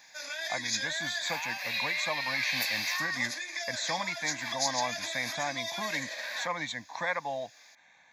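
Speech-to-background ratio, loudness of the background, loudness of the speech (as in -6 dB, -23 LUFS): -2.0 dB, -33.0 LUFS, -35.0 LUFS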